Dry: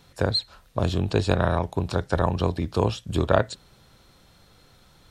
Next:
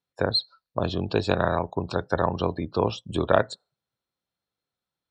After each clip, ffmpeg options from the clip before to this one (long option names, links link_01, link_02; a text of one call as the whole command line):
ffmpeg -i in.wav -af "highpass=frequency=210:poles=1,afftdn=noise_reduction=32:noise_floor=-40,equalizer=frequency=6600:width=4.2:gain=-4,volume=1dB" out.wav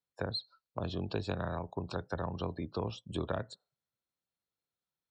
ffmpeg -i in.wav -filter_complex "[0:a]acrossover=split=220[link_01][link_02];[link_02]acompressor=threshold=-26dB:ratio=5[link_03];[link_01][link_03]amix=inputs=2:normalize=0,volume=-8dB" out.wav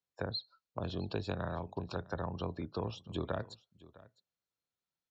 ffmpeg -i in.wav -af "aecho=1:1:656:0.0944,aresample=16000,aresample=44100,volume=-1.5dB" out.wav